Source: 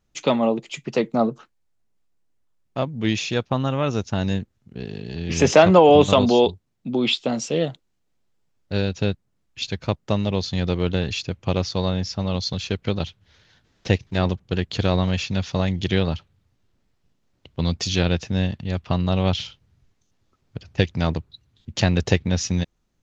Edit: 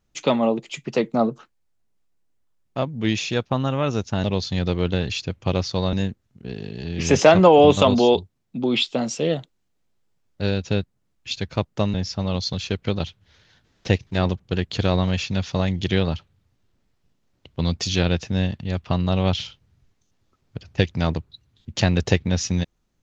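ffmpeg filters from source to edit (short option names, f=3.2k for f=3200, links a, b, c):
-filter_complex "[0:a]asplit=4[a][b][c][d];[a]atrim=end=4.242[e];[b]atrim=start=10.248:end=11.942[f];[c]atrim=start=4.238:end=10.252[g];[d]atrim=start=11.938[h];[e][f]acrossfade=d=0.004:c1=hsin:c2=hsin[i];[i][g]acrossfade=d=0.004:c1=hsin:c2=hsin[j];[j][h]acrossfade=d=0.004:c1=hsin:c2=hsin"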